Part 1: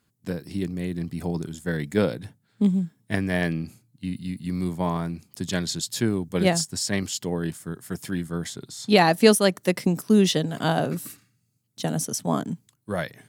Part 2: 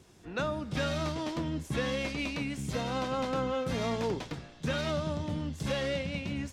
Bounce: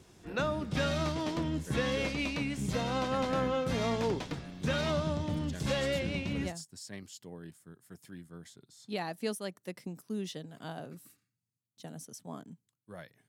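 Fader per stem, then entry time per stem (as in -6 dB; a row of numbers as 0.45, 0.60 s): -19.0, +0.5 dB; 0.00, 0.00 s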